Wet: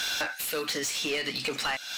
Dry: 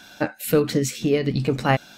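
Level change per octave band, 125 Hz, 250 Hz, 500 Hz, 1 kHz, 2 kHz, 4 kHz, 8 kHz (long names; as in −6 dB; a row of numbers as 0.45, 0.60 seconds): −24.5, −16.5, −12.5, −9.0, 0.0, +5.0, +0.5 decibels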